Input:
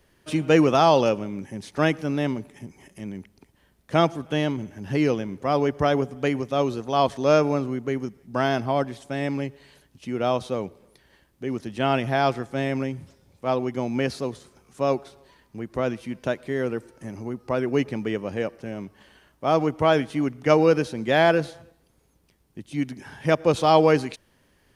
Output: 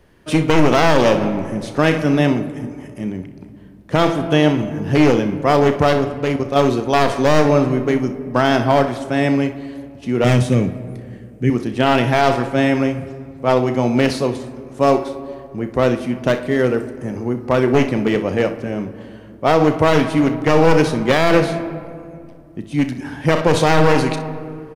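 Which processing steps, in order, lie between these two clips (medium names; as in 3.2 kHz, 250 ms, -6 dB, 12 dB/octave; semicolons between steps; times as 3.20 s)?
one-sided wavefolder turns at -18.5 dBFS; 5.93–6.56 s: level held to a coarse grid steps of 14 dB; 10.24–11.50 s: ten-band graphic EQ 125 Hz +11 dB, 250 Hz +4 dB, 500 Hz -4 dB, 1 kHz -12 dB, 2 kHz +7 dB, 4 kHz -5 dB, 8 kHz +7 dB; early reflections 33 ms -12 dB, 62 ms -14 dB; on a send at -11.5 dB: reverberation RT60 2.3 s, pre-delay 4 ms; on the sum: loudness maximiser +10.5 dB; tape noise reduction on one side only decoder only; trim -1 dB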